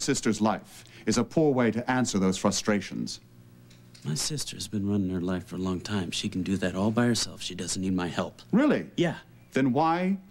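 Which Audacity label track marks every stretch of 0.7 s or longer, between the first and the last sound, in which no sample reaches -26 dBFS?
3.120000	4.080000	silence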